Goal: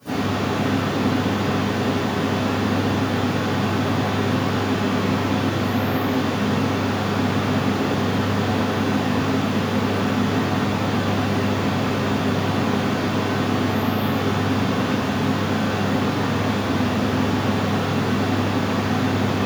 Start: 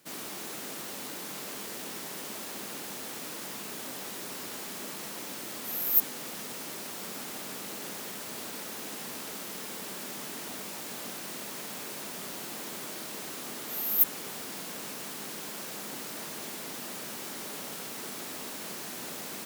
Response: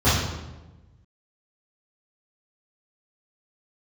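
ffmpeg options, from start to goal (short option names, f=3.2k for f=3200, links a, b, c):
-filter_complex "[1:a]atrim=start_sample=2205[a];[0:a][a]afir=irnorm=-1:irlink=0,acrossover=split=3500[b][c];[c]acompressor=threshold=-43dB:ratio=4:attack=1:release=60[d];[b][d]amix=inputs=2:normalize=0,volume=-1dB"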